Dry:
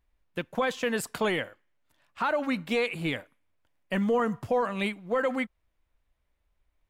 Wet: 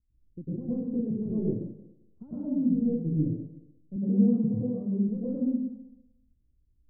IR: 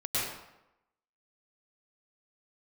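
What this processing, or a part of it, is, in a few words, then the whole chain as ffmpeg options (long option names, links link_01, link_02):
next room: -filter_complex "[0:a]lowpass=frequency=290:width=0.5412,lowpass=frequency=290:width=1.3066[link_01];[1:a]atrim=start_sample=2205[link_02];[link_01][link_02]afir=irnorm=-1:irlink=0,asettb=1/sr,asplit=3[link_03][link_04][link_05];[link_03]atrim=end=3.964[link_06];[link_04]atrim=start=3.96:end=5.09,asetpts=PTS-STARTPTS,afade=type=in:duration=0.004:curve=qsin,afade=type=out:start_time=1.126:duration=0.004:curve=qsin,highpass=120[link_07];[link_05]atrim=start=5.086[link_08];[link_06][link_07]acrossfade=duration=0.004:curve1=hsin:curve2=qsin[link_09];[link_09][link_08]acrossfade=duration=0.004:curve1=qsin:curve2=hsin"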